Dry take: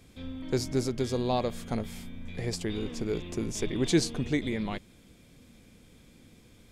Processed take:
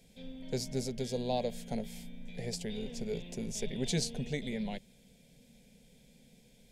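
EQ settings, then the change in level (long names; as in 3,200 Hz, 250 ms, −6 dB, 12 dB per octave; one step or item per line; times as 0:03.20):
phaser with its sweep stopped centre 320 Hz, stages 6
−2.5 dB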